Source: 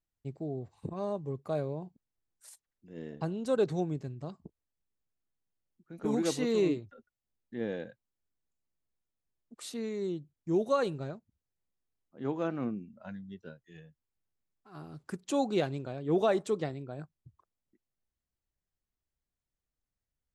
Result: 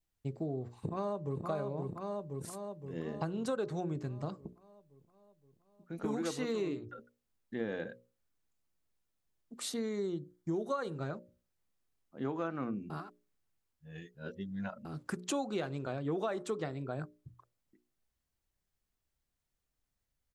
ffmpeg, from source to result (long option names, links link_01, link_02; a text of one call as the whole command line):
ffmpeg -i in.wav -filter_complex "[0:a]asplit=2[link_01][link_02];[link_02]afade=type=in:start_time=0.78:duration=0.01,afade=type=out:start_time=1.46:duration=0.01,aecho=0:1:520|1040|1560|2080|2600|3120|3640|4160|4680:0.630957|0.378574|0.227145|0.136287|0.0817721|0.0490632|0.0294379|0.0176628|0.0105977[link_03];[link_01][link_03]amix=inputs=2:normalize=0,asettb=1/sr,asplit=3[link_04][link_05][link_06];[link_04]atrim=end=9.684[link_07];[link_05]atrim=start=9.68:end=10.96,asetpts=PTS-STARTPTS,afade=type=in:duration=0.004:curve=qsin,afade=type=out:start_time=1.276:duration=0.004:curve=qsin,bandreject=frequency=2600:width=5.1[link_08];[link_06]atrim=start=10.956[link_09];[link_07][link_08]acrossfade=duration=0.004:curve1=hsin:curve2=qsin[link_10];[link_10][link_09]acrossfade=duration=0.004:curve1=qsin:curve2=hsin,asplit=3[link_11][link_12][link_13];[link_11]atrim=end=12.902[link_14];[link_12]atrim=start=12.898:end=14.852,asetpts=PTS-STARTPTS,areverse[link_15];[link_13]atrim=start=14.848[link_16];[link_14][link_15]acrossfade=duration=0.004:curve1=hsin:curve2=hsin[link_17];[link_17][link_16]acrossfade=duration=0.004:curve1=hsin:curve2=hsin,bandreject=frequency=60:width_type=h:width=6,bandreject=frequency=120:width_type=h:width=6,bandreject=frequency=180:width_type=h:width=6,bandreject=frequency=240:width_type=h:width=6,bandreject=frequency=300:width_type=h:width=6,bandreject=frequency=360:width_type=h:width=6,bandreject=frequency=420:width_type=h:width=6,bandreject=frequency=480:width_type=h:width=6,bandreject=frequency=540:width_type=h:width=6,bandreject=frequency=600:width_type=h:width=6,adynamicequalizer=threshold=0.00224:dfrequency=1300:dqfactor=1.7:tfrequency=1300:tqfactor=1.7:attack=5:release=100:ratio=0.375:range=3.5:mode=boostabove:tftype=bell,acompressor=threshold=-37dB:ratio=6,volume=4.5dB" out.wav